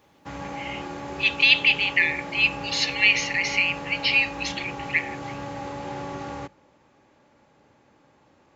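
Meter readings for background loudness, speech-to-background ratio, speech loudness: -35.0 LUFS, 14.0 dB, -21.0 LUFS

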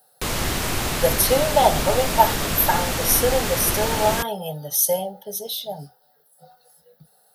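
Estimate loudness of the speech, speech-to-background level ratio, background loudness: -21.5 LUFS, 2.5 dB, -24.0 LUFS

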